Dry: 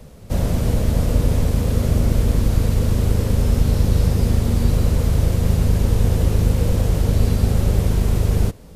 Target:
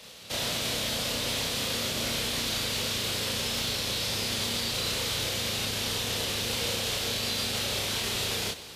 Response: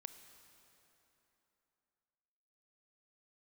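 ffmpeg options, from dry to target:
-filter_complex "[0:a]highpass=f=1300:p=1,equalizer=f=3600:t=o:w=1.5:g=13,alimiter=limit=0.0668:level=0:latency=1,asplit=2[s0][s1];[1:a]atrim=start_sample=2205,adelay=30[s2];[s1][s2]afir=irnorm=-1:irlink=0,volume=1.68[s3];[s0][s3]amix=inputs=2:normalize=0"

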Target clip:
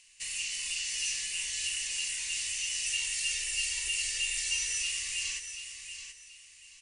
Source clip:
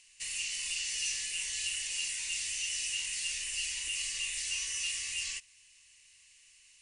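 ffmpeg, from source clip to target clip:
-filter_complex "[0:a]asettb=1/sr,asplit=3[s0][s1][s2];[s0]atrim=end=2.854[s3];[s1]atrim=start=2.85:end=4.82,asetpts=PTS-STARTPTS,afade=t=in:d=0.004:c=qsin,afade=t=out:st=1.966:d=0.004:c=qsin,aecho=1:1:2.2:0.7,atrim=end_sample=86877[s4];[s2]atrim=start=4.816[s5];[s3][s4]acrossfade=d=0.004:c1=hsin:c2=qsin[s6];[s6][s5]acrossfade=d=0.004:c1=qsin:c2=hsin,aecho=1:1:731|1462|2193:0.355|0.0958|0.0259,volume=1.12"

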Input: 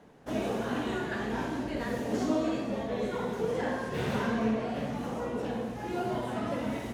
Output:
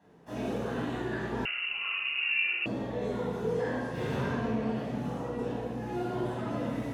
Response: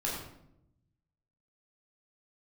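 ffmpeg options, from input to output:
-filter_complex "[0:a]highpass=70[s0];[1:a]atrim=start_sample=2205[s1];[s0][s1]afir=irnorm=-1:irlink=0,asettb=1/sr,asplit=3[s2][s3][s4];[s2]atrim=end=1.454[s5];[s3]atrim=start=1.45:end=2.66,asetpts=PTS-STARTPTS,afade=t=in:d=0.004:c=qsin,afade=t=out:st=1.206:d=0.004:c=qsin,lowpass=f=2600:t=q:w=0.5098,lowpass=f=2600:t=q:w=0.6013,lowpass=f=2600:t=q:w=0.9,lowpass=f=2600:t=q:w=2.563,afreqshift=-3000[s6];[s4]atrim=start=2.656[s7];[s5][s6]acrossfade=d=0.004:c1=hsin:c2=qsin[s8];[s8][s7]acrossfade=d=0.004:c1=qsin:c2=hsin,volume=0.398"

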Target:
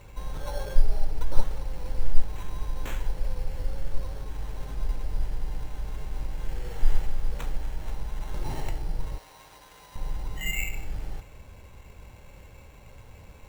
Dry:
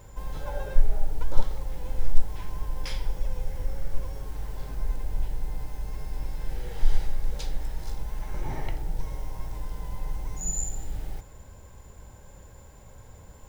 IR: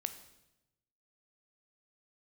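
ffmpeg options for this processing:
-filter_complex "[0:a]acrusher=samples=9:mix=1:aa=0.000001,asettb=1/sr,asplit=3[s0][s1][s2];[s0]atrim=end=9.184[s3];[s1]atrim=start=9.18:end=9.96,asetpts=PTS-STARTPTS,afade=t=in:d=0.004:c=qsin,afade=t=out:st=0.776:d=0.004:c=qsin,highpass=f=1100:p=1[s4];[s2]atrim=start=9.956[s5];[s3][s4]acrossfade=d=0.004:c1=hsin:c2=qsin[s6];[s6][s5]acrossfade=d=0.004:c1=qsin:c2=hsin"

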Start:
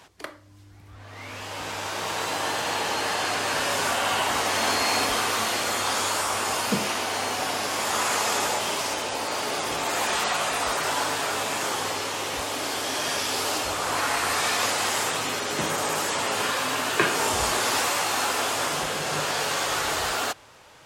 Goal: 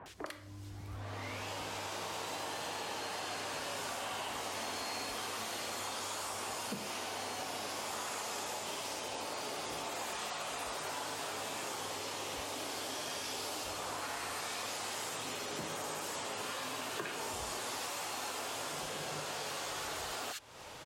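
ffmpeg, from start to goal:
-filter_complex "[0:a]acrossover=split=1600[s0][s1];[s1]adelay=60[s2];[s0][s2]amix=inputs=2:normalize=0,acompressor=threshold=0.00794:ratio=6,volume=1.41"

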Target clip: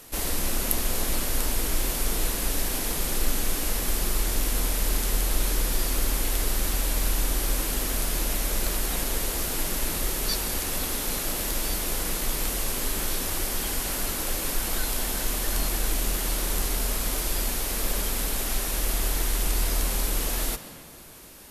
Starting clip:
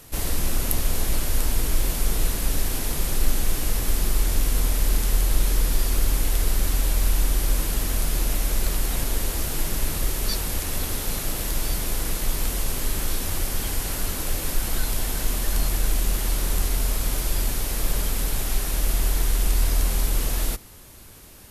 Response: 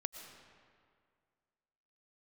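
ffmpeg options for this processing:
-filter_complex "[0:a]asplit=2[s0][s1];[s1]highpass=f=110:w=0.5412,highpass=f=110:w=1.3066[s2];[1:a]atrim=start_sample=2205,asetrate=37926,aresample=44100[s3];[s2][s3]afir=irnorm=-1:irlink=0,volume=1.19[s4];[s0][s4]amix=inputs=2:normalize=0,volume=0.531"

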